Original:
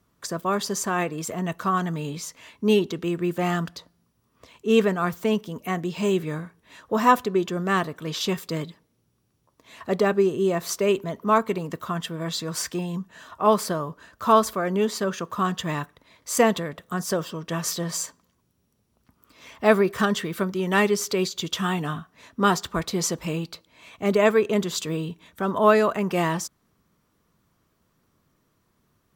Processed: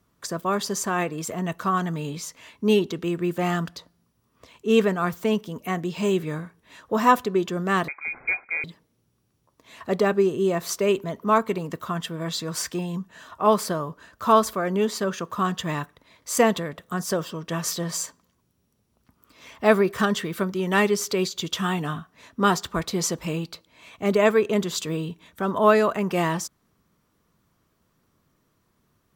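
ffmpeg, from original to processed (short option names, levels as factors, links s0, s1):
-filter_complex "[0:a]asettb=1/sr,asplit=3[s0][s1][s2];[s0]atrim=end=7.884[s3];[s1]atrim=start=7.88:end=8.64,asetpts=PTS-STARTPTS,afade=t=in:d=0.004:c=qsin,afade=t=out:st=0.756:d=0.004:c=qsin,lowpass=f=2200:t=q:w=0.5098,lowpass=f=2200:t=q:w=0.6013,lowpass=f=2200:t=q:w=0.9,lowpass=f=2200:t=q:w=2.563,afreqshift=-2600[s4];[s2]atrim=start=8.636[s5];[s3][s4]acrossfade=d=0.004:c1=hsin:c2=qsin[s6];[s6][s5]acrossfade=d=0.004:c1=qsin:c2=hsin"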